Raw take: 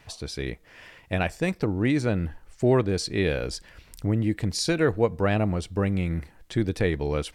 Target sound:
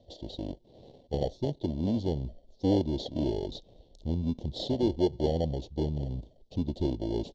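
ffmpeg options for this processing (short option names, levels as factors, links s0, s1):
-filter_complex "[0:a]asetrate=34006,aresample=44100,atempo=1.29684,acrossover=split=320|3400[s0][s1][s2];[s1]acrusher=samples=35:mix=1:aa=0.000001[s3];[s0][s3][s2]amix=inputs=3:normalize=0,firequalizer=gain_entry='entry(140,0);entry(570,9);entry(1400,-23);entry(3600,5);entry(9700,-28)':delay=0.05:min_phase=1,volume=0.447"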